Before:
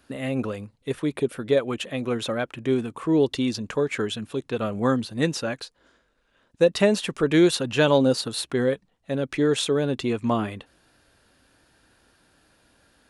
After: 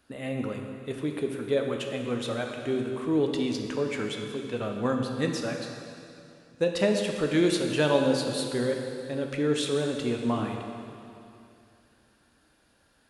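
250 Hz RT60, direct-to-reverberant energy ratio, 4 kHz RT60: 2.8 s, 2.5 dB, 2.5 s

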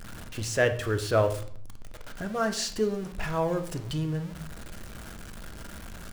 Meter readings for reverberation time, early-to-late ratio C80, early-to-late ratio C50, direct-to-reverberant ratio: 0.55 s, 16.0 dB, 12.5 dB, 7.0 dB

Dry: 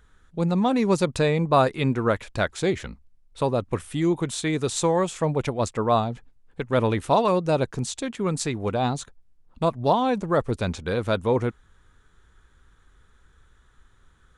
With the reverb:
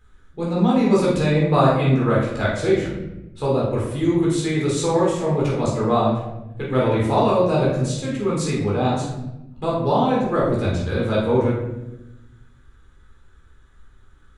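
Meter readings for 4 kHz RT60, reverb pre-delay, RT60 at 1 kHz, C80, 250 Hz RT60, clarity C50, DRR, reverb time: 0.65 s, 14 ms, 0.80 s, 5.0 dB, 1.6 s, 1.5 dB, -6.0 dB, 0.95 s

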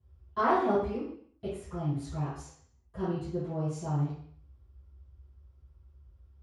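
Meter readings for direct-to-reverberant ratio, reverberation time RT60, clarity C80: -18.0 dB, 0.55 s, 5.5 dB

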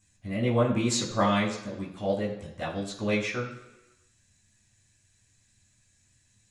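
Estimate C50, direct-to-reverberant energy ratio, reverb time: 7.5 dB, -6.0 dB, 1.1 s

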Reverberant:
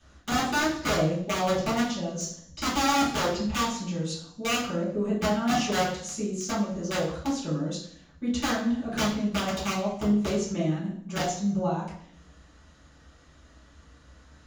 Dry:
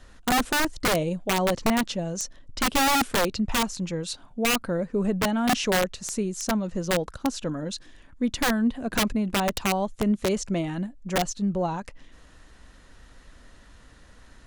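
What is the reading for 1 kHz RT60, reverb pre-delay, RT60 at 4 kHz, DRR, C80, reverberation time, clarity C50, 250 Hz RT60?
0.60 s, 3 ms, 0.65 s, -10.0 dB, 8.0 dB, 0.60 s, 4.5 dB, 0.75 s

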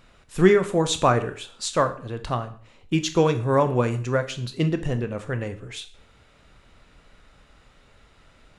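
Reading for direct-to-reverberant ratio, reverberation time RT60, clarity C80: 8.5 dB, 0.45 s, 17.5 dB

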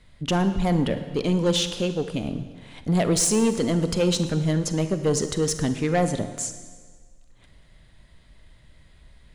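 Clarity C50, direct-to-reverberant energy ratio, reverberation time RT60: 10.5 dB, 9.5 dB, 1.6 s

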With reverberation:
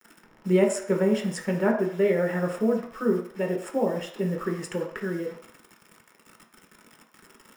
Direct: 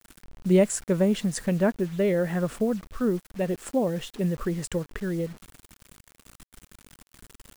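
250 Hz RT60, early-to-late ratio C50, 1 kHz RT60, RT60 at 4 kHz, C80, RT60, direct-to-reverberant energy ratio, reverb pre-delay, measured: 0.45 s, 7.0 dB, 0.65 s, 0.65 s, 10.0 dB, 0.60 s, 0.0 dB, 3 ms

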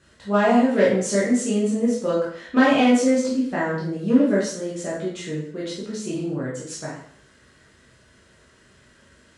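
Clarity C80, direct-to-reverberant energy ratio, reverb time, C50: 7.0 dB, -7.5 dB, 0.55 s, 2.5 dB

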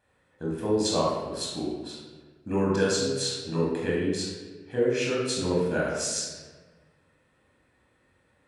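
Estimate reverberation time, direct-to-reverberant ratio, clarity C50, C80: 1.4 s, -4.5 dB, 0.5 dB, 3.5 dB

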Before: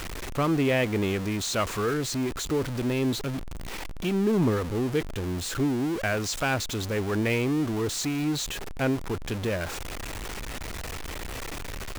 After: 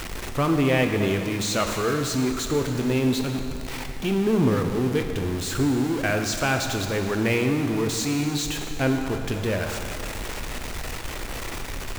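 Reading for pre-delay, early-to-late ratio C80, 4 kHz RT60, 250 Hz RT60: 4 ms, 6.5 dB, 2.3 s, 2.4 s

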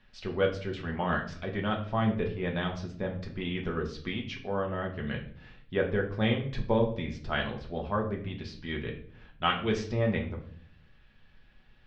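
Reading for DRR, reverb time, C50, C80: 0.0 dB, 0.55 s, 9.5 dB, 13.5 dB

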